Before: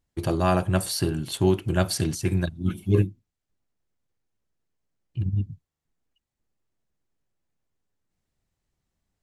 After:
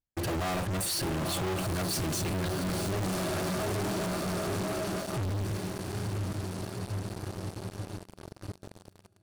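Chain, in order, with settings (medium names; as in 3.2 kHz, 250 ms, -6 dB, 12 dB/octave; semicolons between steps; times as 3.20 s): echo that smears into a reverb 913 ms, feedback 65%, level -10.5 dB; waveshaping leveller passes 5; 3.02–5.24 s: graphic EQ with 31 bands 100 Hz -6 dB, 630 Hz +8 dB, 1.25 kHz +6 dB; hard clipper -24 dBFS, distortion -5 dB; trim -6 dB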